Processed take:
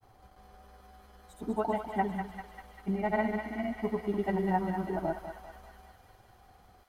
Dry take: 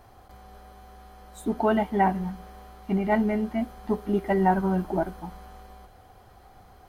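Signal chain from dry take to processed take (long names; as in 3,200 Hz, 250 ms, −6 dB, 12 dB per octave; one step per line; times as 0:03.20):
granular cloud, pitch spread up and down by 0 semitones
feedback echo with a high-pass in the loop 197 ms, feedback 75%, high-pass 1,100 Hz, level −4 dB
level −6 dB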